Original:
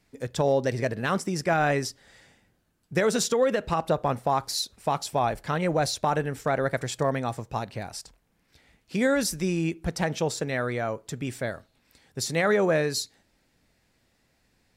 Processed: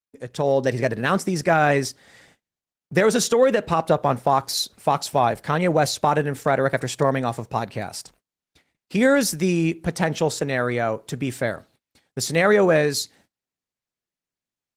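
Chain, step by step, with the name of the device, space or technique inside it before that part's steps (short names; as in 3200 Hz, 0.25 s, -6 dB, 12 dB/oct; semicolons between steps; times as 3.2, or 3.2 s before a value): video call (HPF 100 Hz 12 dB/oct; AGC gain up to 8 dB; gate -50 dBFS, range -33 dB; gain -1.5 dB; Opus 20 kbps 48000 Hz)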